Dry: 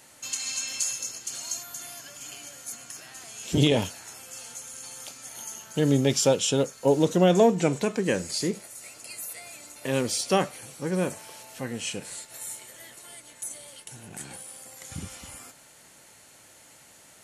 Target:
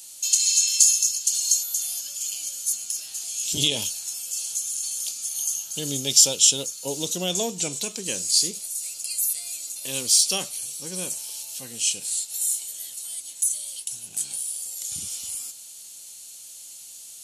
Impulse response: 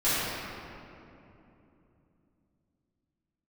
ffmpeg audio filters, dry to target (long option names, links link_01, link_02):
-af "aexciter=amount=11.3:drive=4:freq=2800,volume=-10.5dB"